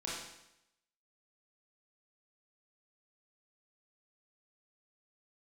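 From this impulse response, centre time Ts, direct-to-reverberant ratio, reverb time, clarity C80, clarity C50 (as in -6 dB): 67 ms, -6.5 dB, 0.85 s, 3.5 dB, 0.0 dB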